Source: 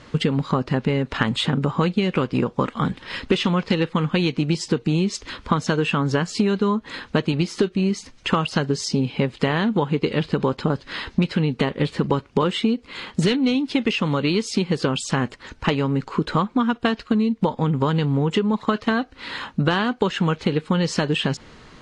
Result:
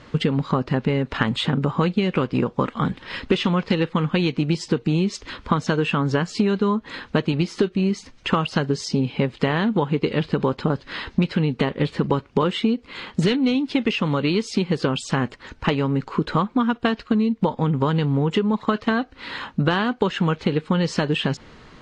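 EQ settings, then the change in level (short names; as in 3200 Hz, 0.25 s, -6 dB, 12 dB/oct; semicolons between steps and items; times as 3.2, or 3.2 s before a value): high shelf 8200 Hz -11.5 dB; 0.0 dB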